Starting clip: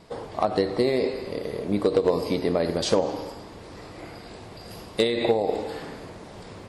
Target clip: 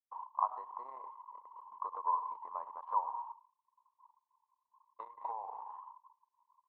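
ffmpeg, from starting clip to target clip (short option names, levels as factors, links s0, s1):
-af "agate=range=0.0224:threshold=0.0224:ratio=3:detection=peak,asuperpass=centerf=1000:order=4:qfactor=6,anlmdn=0.001,volume=1.78"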